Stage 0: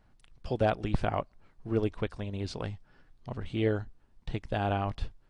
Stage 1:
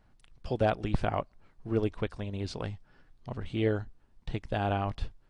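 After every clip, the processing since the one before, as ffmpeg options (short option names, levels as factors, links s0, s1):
-af anull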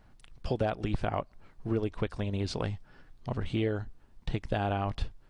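-af "acompressor=threshold=0.0282:ratio=5,volume=1.78"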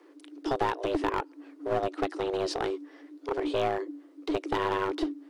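-af "afreqshift=280,aeval=exprs='clip(val(0),-1,0.0335)':c=same,volume=1.41"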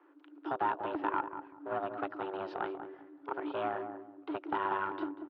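-filter_complex "[0:a]highpass=160,equalizer=f=460:t=q:w=4:g=-9,equalizer=f=900:t=q:w=4:g=6,equalizer=f=1400:t=q:w=4:g=8,equalizer=f=2100:t=q:w=4:g=-5,lowpass=f=2800:w=0.5412,lowpass=f=2800:w=1.3066,asplit=2[s0][s1];[s1]adelay=191,lowpass=f=830:p=1,volume=0.473,asplit=2[s2][s3];[s3]adelay=191,lowpass=f=830:p=1,volume=0.3,asplit=2[s4][s5];[s5]adelay=191,lowpass=f=830:p=1,volume=0.3,asplit=2[s6][s7];[s7]adelay=191,lowpass=f=830:p=1,volume=0.3[s8];[s2][s4][s6][s8]amix=inputs=4:normalize=0[s9];[s0][s9]amix=inputs=2:normalize=0,volume=0.473"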